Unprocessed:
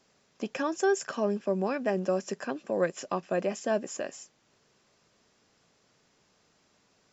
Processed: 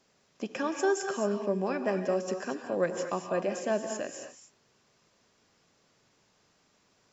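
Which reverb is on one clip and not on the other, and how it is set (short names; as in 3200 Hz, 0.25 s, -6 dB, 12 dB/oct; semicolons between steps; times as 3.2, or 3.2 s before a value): non-linear reverb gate 0.26 s rising, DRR 5.5 dB; gain -1.5 dB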